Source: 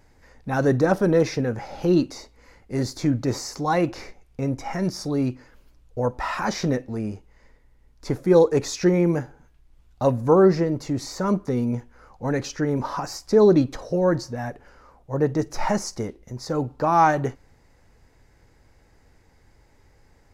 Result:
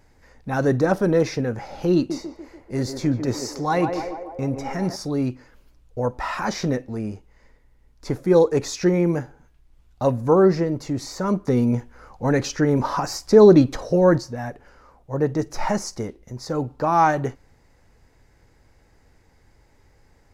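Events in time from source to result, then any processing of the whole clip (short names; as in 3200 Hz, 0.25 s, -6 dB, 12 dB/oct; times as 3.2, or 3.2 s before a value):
1.95–4.96 narrowing echo 0.146 s, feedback 69%, band-pass 630 Hz, level -5 dB
11.47–14.18 gain +4.5 dB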